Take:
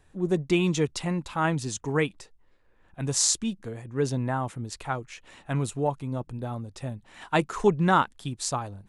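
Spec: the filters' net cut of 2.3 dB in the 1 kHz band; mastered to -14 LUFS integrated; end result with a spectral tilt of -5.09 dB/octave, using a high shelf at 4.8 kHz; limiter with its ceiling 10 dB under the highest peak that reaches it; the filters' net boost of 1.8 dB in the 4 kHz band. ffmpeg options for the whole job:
-af "equalizer=f=1000:t=o:g=-3,equalizer=f=4000:t=o:g=6.5,highshelf=f=4800:g=-7.5,volume=6.68,alimiter=limit=0.891:level=0:latency=1"

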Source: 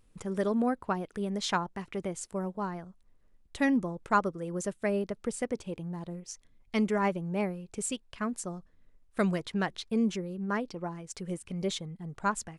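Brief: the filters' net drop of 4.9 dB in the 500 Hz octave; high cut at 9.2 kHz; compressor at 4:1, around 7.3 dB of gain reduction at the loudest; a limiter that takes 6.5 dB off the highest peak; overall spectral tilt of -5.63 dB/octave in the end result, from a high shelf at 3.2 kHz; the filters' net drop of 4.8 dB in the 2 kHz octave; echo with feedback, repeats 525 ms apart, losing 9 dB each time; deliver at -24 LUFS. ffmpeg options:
-af "lowpass=9200,equalizer=f=500:t=o:g=-6,equalizer=f=2000:t=o:g=-4,highshelf=f=3200:g=-6.5,acompressor=threshold=0.0224:ratio=4,alimiter=level_in=2:limit=0.0631:level=0:latency=1,volume=0.501,aecho=1:1:525|1050|1575|2100:0.355|0.124|0.0435|0.0152,volume=6.31"

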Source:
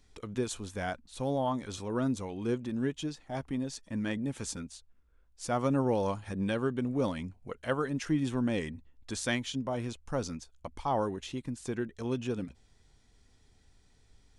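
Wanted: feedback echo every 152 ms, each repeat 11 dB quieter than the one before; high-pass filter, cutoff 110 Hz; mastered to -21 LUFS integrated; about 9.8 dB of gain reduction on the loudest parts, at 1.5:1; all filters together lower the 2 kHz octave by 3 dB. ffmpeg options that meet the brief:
-af "highpass=110,equalizer=f=2000:t=o:g=-4,acompressor=threshold=0.00224:ratio=1.5,aecho=1:1:152|304|456:0.282|0.0789|0.0221,volume=12.6"

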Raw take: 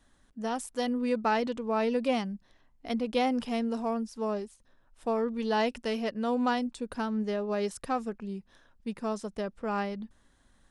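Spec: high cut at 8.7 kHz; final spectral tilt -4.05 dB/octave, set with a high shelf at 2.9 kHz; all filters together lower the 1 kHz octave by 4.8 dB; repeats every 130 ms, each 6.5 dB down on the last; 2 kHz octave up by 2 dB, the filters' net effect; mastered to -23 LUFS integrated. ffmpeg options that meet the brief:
-af "lowpass=8700,equalizer=f=1000:t=o:g=-7.5,equalizer=f=2000:t=o:g=8,highshelf=f=2900:g=-8,aecho=1:1:130|260|390|520|650|780:0.473|0.222|0.105|0.0491|0.0231|0.0109,volume=2.66"

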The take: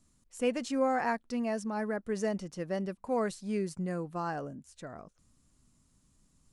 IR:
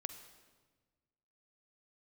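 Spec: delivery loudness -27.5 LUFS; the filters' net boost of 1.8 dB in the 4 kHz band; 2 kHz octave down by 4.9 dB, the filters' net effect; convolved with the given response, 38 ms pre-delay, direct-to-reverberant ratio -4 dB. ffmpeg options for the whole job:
-filter_complex "[0:a]equalizer=f=2000:t=o:g=-7.5,equalizer=f=4000:t=o:g=5,asplit=2[s0][s1];[1:a]atrim=start_sample=2205,adelay=38[s2];[s1][s2]afir=irnorm=-1:irlink=0,volume=2[s3];[s0][s3]amix=inputs=2:normalize=0,volume=1.12"

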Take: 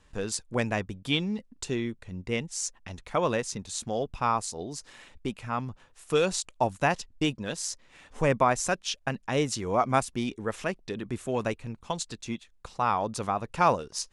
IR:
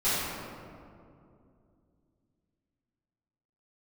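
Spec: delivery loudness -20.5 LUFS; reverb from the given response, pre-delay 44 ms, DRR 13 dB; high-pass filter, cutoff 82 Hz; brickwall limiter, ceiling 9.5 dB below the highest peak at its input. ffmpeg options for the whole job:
-filter_complex "[0:a]highpass=82,alimiter=limit=0.119:level=0:latency=1,asplit=2[s0][s1];[1:a]atrim=start_sample=2205,adelay=44[s2];[s1][s2]afir=irnorm=-1:irlink=0,volume=0.0501[s3];[s0][s3]amix=inputs=2:normalize=0,volume=3.98"

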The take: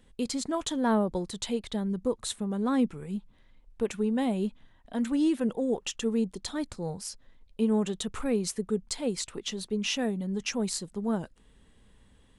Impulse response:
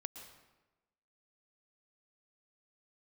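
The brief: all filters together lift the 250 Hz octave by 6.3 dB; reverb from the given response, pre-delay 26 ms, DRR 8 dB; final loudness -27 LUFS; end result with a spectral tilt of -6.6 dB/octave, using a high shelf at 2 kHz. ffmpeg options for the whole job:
-filter_complex "[0:a]equalizer=f=250:t=o:g=7.5,highshelf=f=2000:g=-5.5,asplit=2[s0][s1];[1:a]atrim=start_sample=2205,adelay=26[s2];[s1][s2]afir=irnorm=-1:irlink=0,volume=0.562[s3];[s0][s3]amix=inputs=2:normalize=0,volume=0.794"

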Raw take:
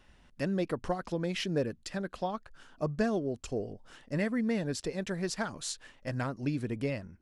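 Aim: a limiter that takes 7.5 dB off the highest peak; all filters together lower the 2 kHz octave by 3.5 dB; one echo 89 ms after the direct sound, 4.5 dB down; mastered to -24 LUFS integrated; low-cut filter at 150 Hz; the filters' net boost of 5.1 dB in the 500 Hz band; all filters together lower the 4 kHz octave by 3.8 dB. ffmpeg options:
-af "highpass=150,equalizer=f=500:t=o:g=6.5,equalizer=f=2000:t=o:g=-4,equalizer=f=4000:t=o:g=-4,alimiter=limit=0.0841:level=0:latency=1,aecho=1:1:89:0.596,volume=2.66"

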